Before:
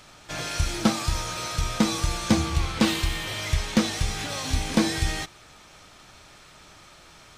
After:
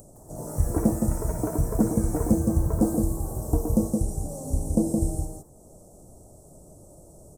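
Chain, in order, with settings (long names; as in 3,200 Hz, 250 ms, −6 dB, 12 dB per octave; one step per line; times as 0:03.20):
Chebyshev band-stop filter 610–8,400 Hz, order 3
upward compression, threshold −43 dBFS
single-tap delay 167 ms −4 dB
delay with pitch and tempo change per echo 159 ms, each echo +6 semitones, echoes 3, each echo −6 dB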